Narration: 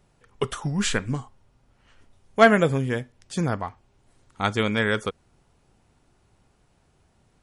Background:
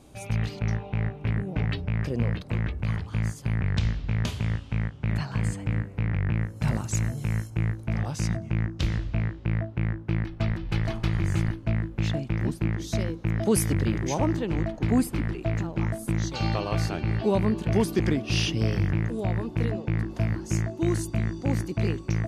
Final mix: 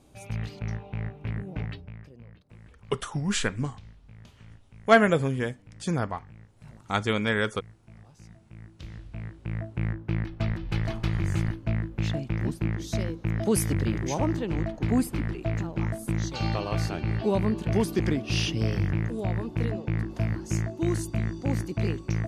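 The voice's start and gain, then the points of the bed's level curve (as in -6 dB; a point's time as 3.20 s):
2.50 s, -2.5 dB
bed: 1.61 s -5.5 dB
2.18 s -23 dB
8.36 s -23 dB
9.83 s -1.5 dB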